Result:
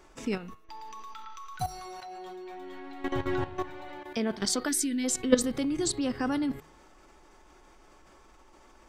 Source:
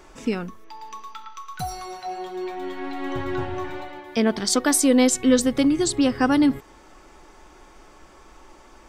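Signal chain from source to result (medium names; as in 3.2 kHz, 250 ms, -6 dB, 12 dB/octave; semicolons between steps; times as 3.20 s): level held to a coarse grid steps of 14 dB; de-hum 156.3 Hz, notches 30; time-frequency box 4.69–5.04 s, 400–1400 Hz -18 dB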